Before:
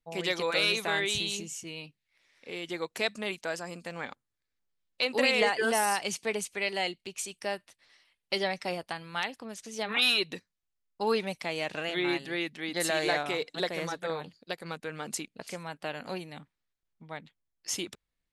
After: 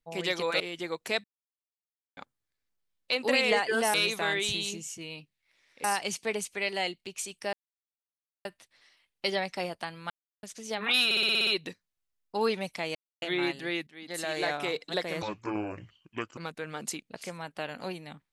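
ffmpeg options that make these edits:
-filter_complex "[0:a]asplit=21[a][b][c][d][e][f][g][h][i][j][k][l][m][n][o][p][q][r][s][t][u];[a]atrim=end=0.602[v];[b]atrim=start=2.498:end=3.14,asetpts=PTS-STARTPTS,afade=t=out:st=0.638:d=0.004:c=hsin[w];[c]atrim=start=3.14:end=4.07,asetpts=PTS-STARTPTS,volume=0[x];[d]atrim=start=4.07:end=5.842,asetpts=PTS-STARTPTS,afade=t=in:d=0.004:c=hsin[y];[e]atrim=start=0.598:end=2.502[z];[f]atrim=start=5.838:end=7.53,asetpts=PTS-STARTPTS,afade=t=out:st=1.688:d=0.004:c=hsin,apad=pad_dur=0.92[aa];[g]atrim=start=7.53:end=9.18,asetpts=PTS-STARTPTS,afade=t=in:d=0.004:c=hsin,afade=t=out:st=1.646:d=0.004:c=hsin[ab];[h]atrim=start=9.18:end=9.51,asetpts=PTS-STARTPTS,volume=0[ac];[i]atrim=start=9.51:end=10.192,asetpts=PTS-STARTPTS,afade=t=in:d=0.004:c=hsin[ad];[j]atrim=start=10.128:end=10.192[ae];[k]atrim=start=10.128:end=10.192[af];[l]atrim=start=10.128:end=10.192[ag];[m]atrim=start=10.128:end=10.192[ah];[n]atrim=start=10.128:end=10.192[ai];[o]atrim=start=10.128:end=10.192[aj];[p]atrim=start=10.128:end=11.61,asetpts=PTS-STARTPTS,afade=t=out:st=1.478:d=0.004:c=hsin[ak];[q]atrim=start=11.61:end=11.88,asetpts=PTS-STARTPTS,volume=0[al];[r]atrim=start=11.88:end=12.53,asetpts=PTS-STARTPTS,afade=t=in:d=0.004:c=hsin,afade=t=out:st=0.646:d=0.004:c=hsin:silence=0.16788[am];[s]atrim=start=12.53:end=13.884,asetpts=PTS-STARTPTS,afade=t=in:d=0.8:silence=0.16788[an];[t]atrim=start=13.88:end=14.63,asetpts=PTS-STARTPTS,asetrate=28665,aresample=44100[ao];[u]atrim=start=14.626[ap];[w][x][y]concat=n=3:v=0:a=1[aq];[v][aq]acrossfade=d=0.004:c1=hsin:c2=hsin[ar];[ar][z]acrossfade=d=0.004:c1=hsin:c2=hsin[as];[aa][ab][ac][ad]concat=n=4:v=0:a=1[at];[as][at]acrossfade=d=0.004:c1=hsin:c2=hsin[au];[au][ae]acrossfade=d=0.004:c1=hsin:c2=hsin[av];[av][af]acrossfade=d=0.004:c1=hsin:c2=hsin[aw];[aw][ag]acrossfade=d=0.004:c1=hsin:c2=hsin[ax];[ax][ah]acrossfade=d=0.004:c1=hsin:c2=hsin[ay];[ay][ai]acrossfade=d=0.004:c1=hsin:c2=hsin[az];[az][aj]acrossfade=d=0.004:c1=hsin:c2=hsin[ba];[ak][al][am][an]concat=n=4:v=0:a=1[bb];[ba][bb]acrossfade=d=0.004:c1=hsin:c2=hsin[bc];[bc][ao]acrossfade=d=0.004:c1=hsin:c2=hsin[bd];[bd][ap]acrossfade=d=0.004:c1=hsin:c2=hsin"

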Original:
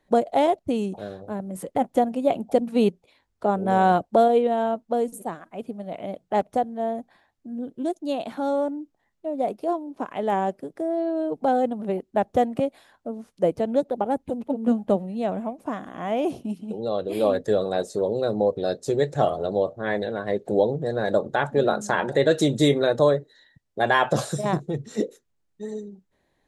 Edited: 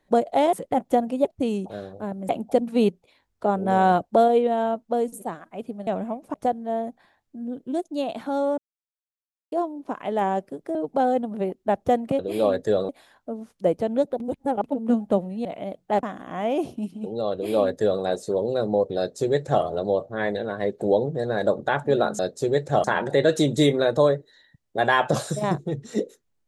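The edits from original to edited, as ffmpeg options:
-filter_complex "[0:a]asplit=17[a][b][c][d][e][f][g][h][i][j][k][l][m][n][o][p][q];[a]atrim=end=0.532[r];[b]atrim=start=1.568:end=2.292[s];[c]atrim=start=0.528:end=1.572[t];[d]atrim=start=2.288:end=5.872[u];[e]atrim=start=15.228:end=15.702[v];[f]atrim=start=6.448:end=8.69,asetpts=PTS-STARTPTS,afade=t=out:st=2.238:d=0.004:c=hsin[w];[g]atrim=start=8.69:end=9.63,asetpts=PTS-STARTPTS,volume=0[x];[h]atrim=start=9.63:end=10.862,asetpts=PTS-STARTPTS,afade=t=in:d=0.004:c=hsin[y];[i]atrim=start=11.228:end=12.672[z];[j]atrim=start=16.998:end=17.702[aa];[k]atrim=start=12.668:end=13.982[ab];[l]atrim=start=13.978:end=14.422,asetpts=PTS-STARTPTS,areverse[ac];[m]atrim=start=14.418:end=15.232[ad];[n]atrim=start=5.868:end=6.452[ae];[o]atrim=start=15.698:end=21.862[af];[p]atrim=start=18.648:end=19.302[ag];[q]atrim=start=21.858[ah];[r][s]acrossfade=d=0.004:c1=hsin:c2=hsin[ai];[ai][t]acrossfade=d=0.004:c1=hsin:c2=hsin[aj];[aj][u]acrossfade=d=0.004:c1=hsin:c2=hsin[ak];[ak][v]acrossfade=d=0.004:c1=hsin:c2=hsin[al];[w][x][y]concat=n=3:v=0:a=1[am];[al][am]acrossfade=d=0.004:c1=hsin:c2=hsin[an];[an][z]acrossfade=d=0.004:c1=hsin:c2=hsin[ao];[ao][aa]acrossfade=d=0.004:c1=hsin:c2=hsin[ap];[ap][ab]acrossfade=d=0.004:c1=hsin:c2=hsin[aq];[aq][ac]acrossfade=d=0.004:c1=hsin:c2=hsin[ar];[ar][ad]acrossfade=d=0.004:c1=hsin:c2=hsin[as];[as][ae]acrossfade=d=0.004:c1=hsin:c2=hsin[at];[at][af]acrossfade=d=0.004:c1=hsin:c2=hsin[au];[au][ag]acrossfade=d=0.004:c1=hsin:c2=hsin[av];[av][ah]acrossfade=d=0.004:c1=hsin:c2=hsin"

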